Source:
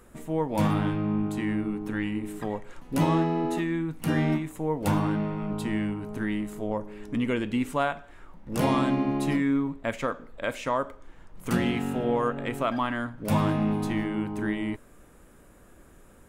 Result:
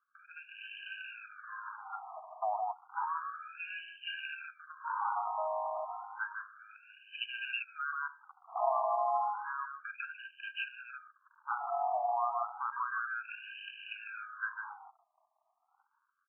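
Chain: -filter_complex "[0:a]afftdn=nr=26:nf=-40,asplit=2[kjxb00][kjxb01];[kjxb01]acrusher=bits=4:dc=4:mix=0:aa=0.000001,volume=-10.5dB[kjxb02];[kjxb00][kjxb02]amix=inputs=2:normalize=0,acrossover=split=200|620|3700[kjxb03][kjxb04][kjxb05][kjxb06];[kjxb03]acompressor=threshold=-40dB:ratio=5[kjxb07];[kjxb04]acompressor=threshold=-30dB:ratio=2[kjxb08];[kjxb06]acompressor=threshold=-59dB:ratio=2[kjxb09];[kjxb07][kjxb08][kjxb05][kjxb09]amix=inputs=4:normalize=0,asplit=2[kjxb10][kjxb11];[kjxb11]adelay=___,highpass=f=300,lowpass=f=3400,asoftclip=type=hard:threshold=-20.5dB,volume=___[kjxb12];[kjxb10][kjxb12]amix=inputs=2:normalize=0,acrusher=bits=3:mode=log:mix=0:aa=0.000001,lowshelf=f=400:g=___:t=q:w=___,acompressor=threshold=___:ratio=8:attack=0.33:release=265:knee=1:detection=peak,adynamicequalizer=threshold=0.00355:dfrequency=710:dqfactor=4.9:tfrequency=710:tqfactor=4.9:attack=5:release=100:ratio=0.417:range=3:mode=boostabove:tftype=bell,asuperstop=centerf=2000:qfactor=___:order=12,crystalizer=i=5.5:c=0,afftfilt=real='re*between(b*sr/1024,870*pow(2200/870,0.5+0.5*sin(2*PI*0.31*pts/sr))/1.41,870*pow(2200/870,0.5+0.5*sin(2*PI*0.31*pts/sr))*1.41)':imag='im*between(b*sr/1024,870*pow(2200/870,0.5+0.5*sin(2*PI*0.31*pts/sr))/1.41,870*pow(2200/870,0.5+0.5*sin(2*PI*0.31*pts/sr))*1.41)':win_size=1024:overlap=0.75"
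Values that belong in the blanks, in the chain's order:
150, -7dB, -13, 3, -26dB, 2.5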